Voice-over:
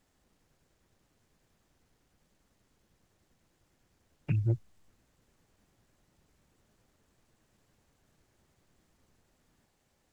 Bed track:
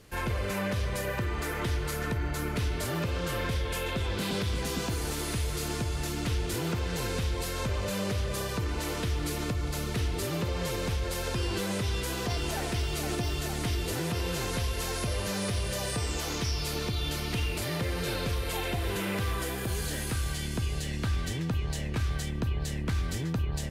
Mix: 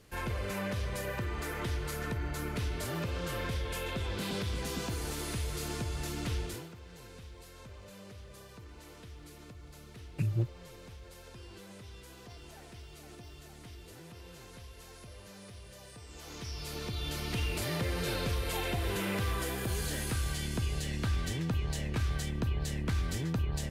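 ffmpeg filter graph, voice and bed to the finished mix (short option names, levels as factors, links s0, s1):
-filter_complex "[0:a]adelay=5900,volume=0.794[s0];[1:a]volume=4.22,afade=t=out:st=6.39:d=0.3:silence=0.188365,afade=t=in:st=16.07:d=1.5:silence=0.141254[s1];[s0][s1]amix=inputs=2:normalize=0"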